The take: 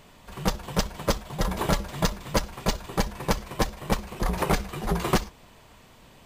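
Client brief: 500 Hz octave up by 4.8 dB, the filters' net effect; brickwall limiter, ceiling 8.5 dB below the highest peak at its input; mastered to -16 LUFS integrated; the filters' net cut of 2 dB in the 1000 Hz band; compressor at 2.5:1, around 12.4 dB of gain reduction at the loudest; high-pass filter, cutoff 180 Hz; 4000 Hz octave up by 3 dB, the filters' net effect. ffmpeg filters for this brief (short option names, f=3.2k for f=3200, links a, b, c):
-af "highpass=180,equalizer=f=500:t=o:g=7,equalizer=f=1k:t=o:g=-5,equalizer=f=4k:t=o:g=4,acompressor=threshold=-38dB:ratio=2.5,volume=26dB,alimiter=limit=-2dB:level=0:latency=1"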